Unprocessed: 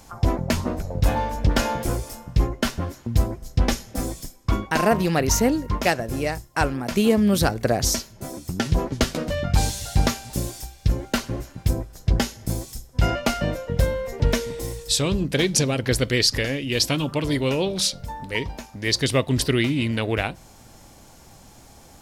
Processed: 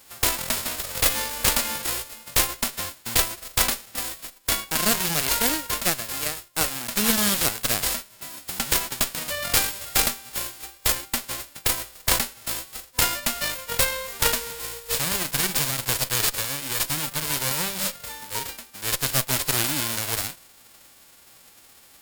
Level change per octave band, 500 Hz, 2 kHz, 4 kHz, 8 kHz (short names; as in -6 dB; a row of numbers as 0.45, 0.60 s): -9.0, +0.5, +1.5, +5.0 dB